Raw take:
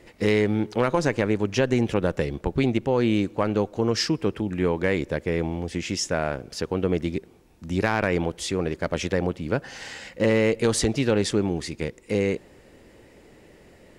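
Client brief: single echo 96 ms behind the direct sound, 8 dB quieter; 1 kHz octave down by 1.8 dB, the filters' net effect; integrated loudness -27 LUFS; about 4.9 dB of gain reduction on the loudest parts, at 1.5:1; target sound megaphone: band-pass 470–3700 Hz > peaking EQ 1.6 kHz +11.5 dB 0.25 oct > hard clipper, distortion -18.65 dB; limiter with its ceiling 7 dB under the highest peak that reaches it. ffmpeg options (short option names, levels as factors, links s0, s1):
-af "equalizer=f=1000:t=o:g=-3,acompressor=threshold=0.0282:ratio=1.5,alimiter=limit=0.0891:level=0:latency=1,highpass=470,lowpass=3700,equalizer=f=1600:t=o:w=0.25:g=11.5,aecho=1:1:96:0.398,asoftclip=type=hard:threshold=0.0531,volume=2.99"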